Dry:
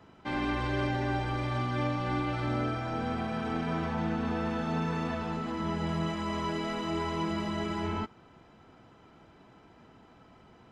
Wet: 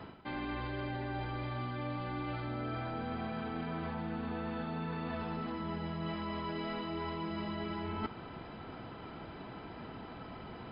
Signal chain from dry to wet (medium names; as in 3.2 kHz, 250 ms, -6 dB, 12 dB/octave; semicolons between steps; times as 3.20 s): reverse; compression 16:1, threshold -45 dBFS, peak gain reduction 19 dB; reverse; brick-wall FIR low-pass 5 kHz; trim +10 dB